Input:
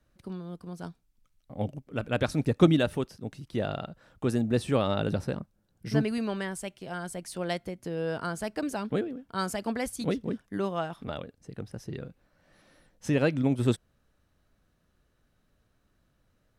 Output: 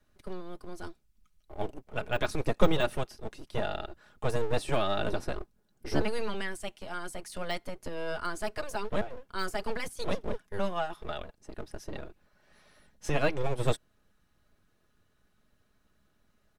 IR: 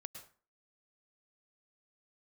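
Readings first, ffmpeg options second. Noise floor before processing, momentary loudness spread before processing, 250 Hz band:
−72 dBFS, 15 LU, −9.0 dB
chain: -filter_complex "[0:a]deesser=0.9,aecho=1:1:4.8:0.55,acrossover=split=550[link_01][link_02];[link_01]aeval=exprs='abs(val(0))':channel_layout=same[link_03];[link_03][link_02]amix=inputs=2:normalize=0"

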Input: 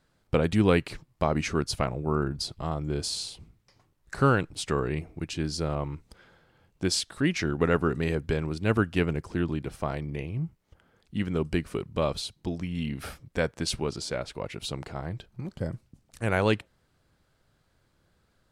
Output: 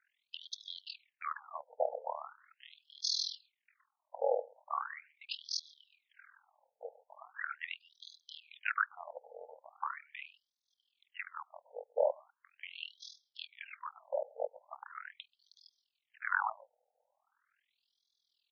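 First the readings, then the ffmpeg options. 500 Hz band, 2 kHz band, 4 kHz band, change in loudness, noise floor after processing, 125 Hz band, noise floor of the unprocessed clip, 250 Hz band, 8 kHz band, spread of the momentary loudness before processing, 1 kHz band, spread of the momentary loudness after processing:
−10.5 dB, −6.5 dB, −6.5 dB, −10.5 dB, below −85 dBFS, below −40 dB, −70 dBFS, below −40 dB, −12.0 dB, 12 LU, −6.5 dB, 19 LU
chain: -filter_complex "[0:a]tremolo=f=41:d=0.889,asplit=2[link_01][link_02];[link_02]adelay=134.1,volume=-26dB,highshelf=frequency=4000:gain=-3.02[link_03];[link_01][link_03]amix=inputs=2:normalize=0,afftfilt=real='re*between(b*sr/1024,610*pow(4700/610,0.5+0.5*sin(2*PI*0.4*pts/sr))/1.41,610*pow(4700/610,0.5+0.5*sin(2*PI*0.4*pts/sr))*1.41)':imag='im*between(b*sr/1024,610*pow(4700/610,0.5+0.5*sin(2*PI*0.4*pts/sr))/1.41,610*pow(4700/610,0.5+0.5*sin(2*PI*0.4*pts/sr))*1.41)':win_size=1024:overlap=0.75,volume=3.5dB"

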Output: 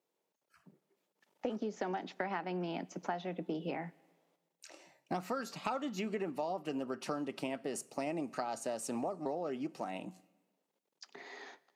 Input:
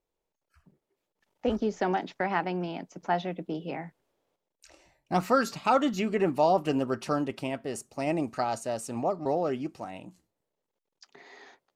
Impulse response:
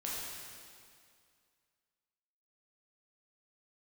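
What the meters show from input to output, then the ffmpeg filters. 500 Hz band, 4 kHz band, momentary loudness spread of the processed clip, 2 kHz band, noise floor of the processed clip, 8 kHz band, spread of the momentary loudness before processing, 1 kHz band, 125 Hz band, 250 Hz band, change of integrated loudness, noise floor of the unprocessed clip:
−9.5 dB, −7.5 dB, 13 LU, −8.5 dB, −85 dBFS, −4.0 dB, 12 LU, −10.5 dB, −10.0 dB, −8.5 dB, −10.0 dB, −85 dBFS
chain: -filter_complex "[0:a]highpass=frequency=160:width=0.5412,highpass=frequency=160:width=1.3066,acompressor=threshold=-35dB:ratio=10,asplit=2[link_01][link_02];[1:a]atrim=start_sample=2205,asetrate=74970,aresample=44100[link_03];[link_02][link_03]afir=irnorm=-1:irlink=0,volume=-18.5dB[link_04];[link_01][link_04]amix=inputs=2:normalize=0,volume=1dB"

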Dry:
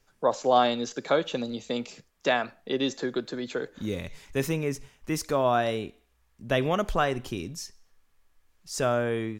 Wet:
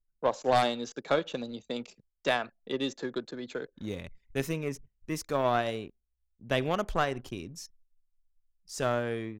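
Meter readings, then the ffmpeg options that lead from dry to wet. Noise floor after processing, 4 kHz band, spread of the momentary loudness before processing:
−79 dBFS, −3.5 dB, 12 LU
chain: -af "anlmdn=0.0631,aeval=exprs='0.398*(cos(1*acos(clip(val(0)/0.398,-1,1)))-cos(1*PI/2))+0.158*(cos(2*acos(clip(val(0)/0.398,-1,1)))-cos(2*PI/2))+0.0398*(cos(4*acos(clip(val(0)/0.398,-1,1)))-cos(4*PI/2))+0.0447*(cos(5*acos(clip(val(0)/0.398,-1,1)))-cos(5*PI/2))+0.0447*(cos(7*acos(clip(val(0)/0.398,-1,1)))-cos(7*PI/2))':channel_layout=same,volume=-4dB"

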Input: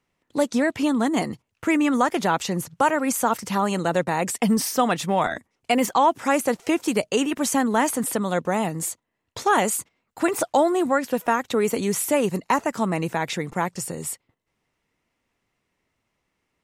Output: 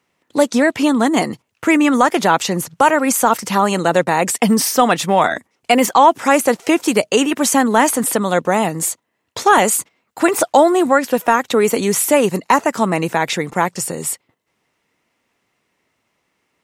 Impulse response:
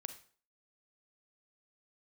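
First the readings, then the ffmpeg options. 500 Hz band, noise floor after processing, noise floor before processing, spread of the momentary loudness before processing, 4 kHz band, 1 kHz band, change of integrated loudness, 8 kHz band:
+7.5 dB, −70 dBFS, −77 dBFS, 8 LU, +8.5 dB, +8.0 dB, +7.5 dB, +8.5 dB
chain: -af "highpass=frequency=210:poles=1,apsyclip=10dB,volume=-1.5dB"

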